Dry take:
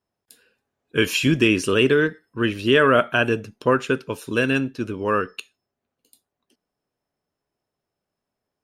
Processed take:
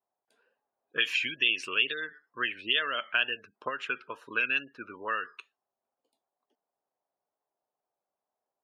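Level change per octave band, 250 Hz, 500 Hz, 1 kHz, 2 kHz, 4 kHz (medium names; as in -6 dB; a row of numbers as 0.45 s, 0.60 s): -25.0 dB, -21.0 dB, -11.5 dB, -5.5 dB, -2.5 dB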